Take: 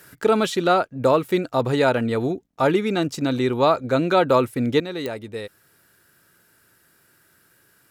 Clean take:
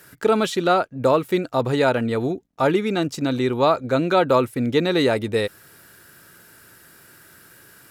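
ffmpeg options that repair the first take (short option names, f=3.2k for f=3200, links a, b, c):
-af "adeclick=t=4,asetnsamples=n=441:p=0,asendcmd='4.8 volume volume 10dB',volume=0dB"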